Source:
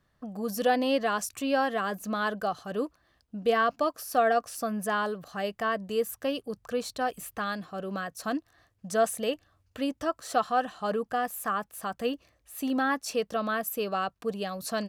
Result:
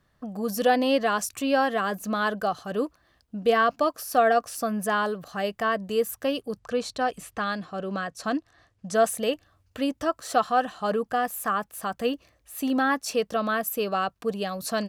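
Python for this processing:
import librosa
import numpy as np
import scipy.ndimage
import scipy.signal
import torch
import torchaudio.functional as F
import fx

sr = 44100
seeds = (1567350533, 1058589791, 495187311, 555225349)

y = fx.lowpass(x, sr, hz=8000.0, slope=12, at=(6.59, 8.94))
y = y * 10.0 ** (3.5 / 20.0)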